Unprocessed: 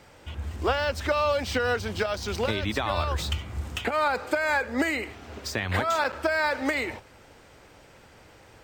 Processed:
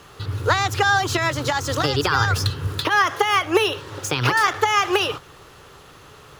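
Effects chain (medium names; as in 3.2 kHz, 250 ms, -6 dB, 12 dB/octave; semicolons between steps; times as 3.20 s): graphic EQ with 31 bands 160 Hz -9 dB, 315 Hz +5 dB, 500 Hz -10 dB, 1 kHz +6 dB, 1.6 kHz -7 dB, 6.3 kHz -5 dB; speed mistake 33 rpm record played at 45 rpm; trim +7.5 dB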